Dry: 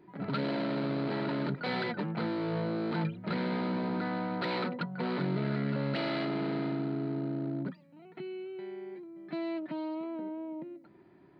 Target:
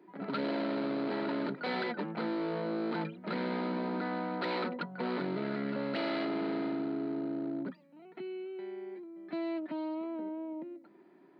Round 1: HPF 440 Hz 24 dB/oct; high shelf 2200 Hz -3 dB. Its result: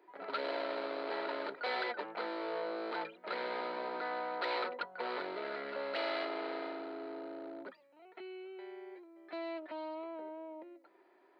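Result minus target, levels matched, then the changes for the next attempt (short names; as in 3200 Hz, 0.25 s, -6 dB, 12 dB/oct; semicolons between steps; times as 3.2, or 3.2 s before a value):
250 Hz band -9.0 dB
change: HPF 210 Hz 24 dB/oct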